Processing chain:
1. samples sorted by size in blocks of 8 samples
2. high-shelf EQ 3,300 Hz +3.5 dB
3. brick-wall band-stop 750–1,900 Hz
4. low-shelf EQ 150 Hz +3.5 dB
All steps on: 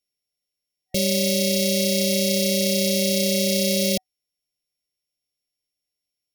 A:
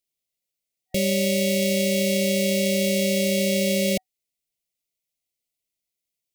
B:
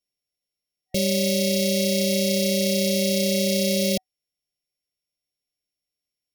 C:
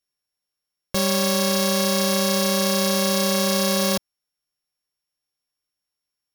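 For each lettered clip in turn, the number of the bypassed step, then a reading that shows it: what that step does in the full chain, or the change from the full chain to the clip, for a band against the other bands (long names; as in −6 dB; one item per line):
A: 1, distortion level −3 dB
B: 2, 8 kHz band −2.5 dB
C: 3, 2 kHz band +3.0 dB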